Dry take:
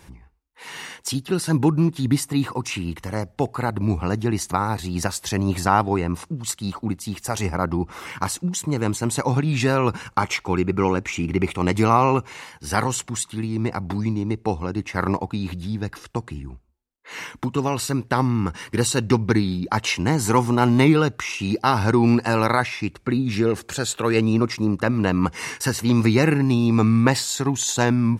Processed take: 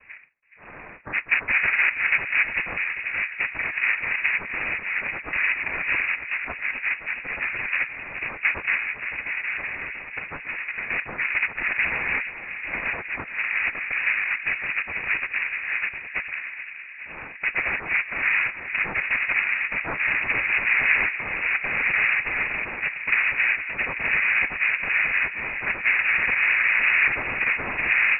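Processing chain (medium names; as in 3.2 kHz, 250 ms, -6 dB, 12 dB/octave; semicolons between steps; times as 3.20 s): coarse spectral quantiser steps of 30 dB; peak limiter -12.5 dBFS, peak gain reduction 9.5 dB; 8.81–10.90 s: compression, threshold -27 dBFS, peak gain reduction 9 dB; noise-vocoded speech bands 2; feedback echo behind a low-pass 421 ms, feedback 76%, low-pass 1.2 kHz, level -11 dB; frequency inversion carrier 2.7 kHz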